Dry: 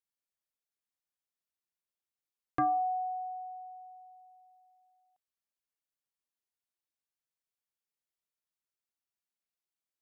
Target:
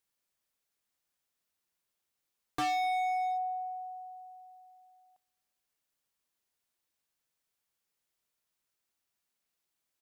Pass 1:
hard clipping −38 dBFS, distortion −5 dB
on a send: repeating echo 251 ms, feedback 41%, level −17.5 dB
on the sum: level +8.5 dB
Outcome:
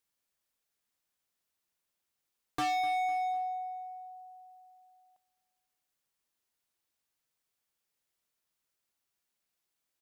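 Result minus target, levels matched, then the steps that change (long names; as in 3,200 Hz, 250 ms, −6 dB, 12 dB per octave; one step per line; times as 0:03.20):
echo-to-direct +12 dB
change: repeating echo 251 ms, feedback 41%, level −29.5 dB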